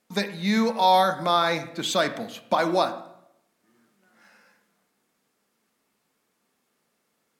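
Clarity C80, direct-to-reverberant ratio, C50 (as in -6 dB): 14.5 dB, 8.0 dB, 12.0 dB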